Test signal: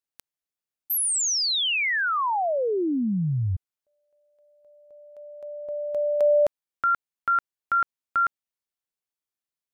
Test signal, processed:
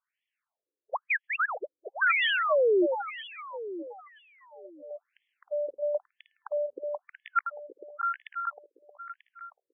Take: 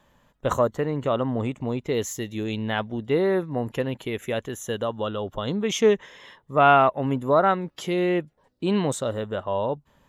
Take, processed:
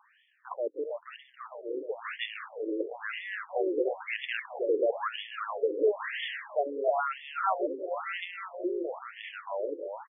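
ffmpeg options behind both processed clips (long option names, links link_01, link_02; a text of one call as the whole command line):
ffmpeg -i in.wav -af "acrusher=samples=7:mix=1:aa=0.000001,lowshelf=frequency=450:gain=5,areverse,acompressor=threshold=-29dB:ratio=6:attack=1.7:release=543:knee=6:detection=peak,areverse,crystalizer=i=4.5:c=0,dynaudnorm=framelen=130:gausssize=31:maxgain=11.5dB,aecho=1:1:313|626|939|1252|1565|1878|2191|2504:0.562|0.326|0.189|0.11|0.0636|0.0369|0.0214|0.0124,afftfilt=real='re*between(b*sr/1024,380*pow(2500/380,0.5+0.5*sin(2*PI*1*pts/sr))/1.41,380*pow(2500/380,0.5+0.5*sin(2*PI*1*pts/sr))*1.41)':imag='im*between(b*sr/1024,380*pow(2500/380,0.5+0.5*sin(2*PI*1*pts/sr))/1.41,380*pow(2500/380,0.5+0.5*sin(2*PI*1*pts/sr))*1.41)':win_size=1024:overlap=0.75,volume=2dB" out.wav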